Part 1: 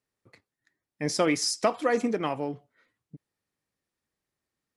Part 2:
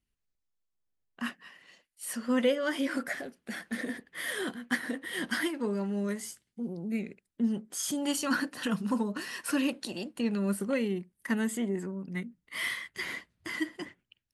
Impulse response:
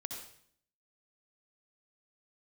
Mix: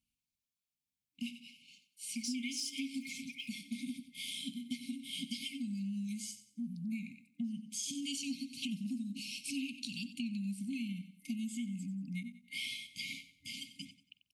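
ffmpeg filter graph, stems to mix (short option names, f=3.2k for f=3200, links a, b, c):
-filter_complex "[0:a]highpass=f=530:w=0.5412,highpass=f=530:w=1.3066,aphaser=in_gain=1:out_gain=1:delay=4.4:decay=0.67:speed=1.2:type=sinusoidal,adelay=1150,volume=-5.5dB[a];[1:a]acrossover=split=8400[b][c];[c]acompressor=threshold=-59dB:ratio=4:attack=1:release=60[d];[b][d]amix=inputs=2:normalize=0,volume=1dB,asplit=2[e][f];[f]volume=-14dB,aecho=0:1:92|184|276|368|460:1|0.32|0.102|0.0328|0.0105[g];[a][e][g]amix=inputs=3:normalize=0,afftfilt=real='re*(1-between(b*sr/4096,290,2100))':imag='im*(1-between(b*sr/4096,290,2100))':win_size=4096:overlap=0.75,highpass=f=160:p=1,acompressor=threshold=-36dB:ratio=6"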